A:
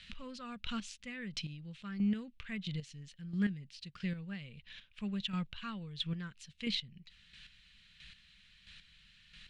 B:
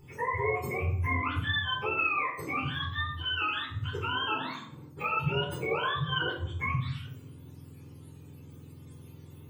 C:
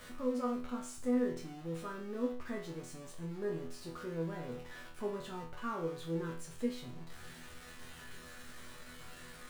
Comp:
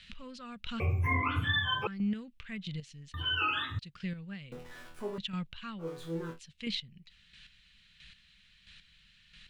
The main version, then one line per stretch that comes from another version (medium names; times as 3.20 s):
A
0.80–1.87 s: from B
3.14–3.79 s: from B
4.52–5.18 s: from C
5.83–6.35 s: from C, crossfade 0.10 s